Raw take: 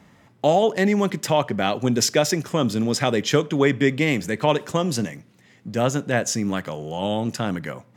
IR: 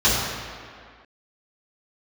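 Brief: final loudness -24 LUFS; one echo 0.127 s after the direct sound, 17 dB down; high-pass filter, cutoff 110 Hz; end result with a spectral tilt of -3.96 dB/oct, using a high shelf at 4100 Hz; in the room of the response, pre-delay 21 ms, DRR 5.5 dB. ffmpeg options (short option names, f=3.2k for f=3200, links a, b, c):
-filter_complex "[0:a]highpass=110,highshelf=f=4.1k:g=6.5,aecho=1:1:127:0.141,asplit=2[a][b];[1:a]atrim=start_sample=2205,adelay=21[c];[b][c]afir=irnorm=-1:irlink=0,volume=-26dB[d];[a][d]amix=inputs=2:normalize=0,volume=-4dB"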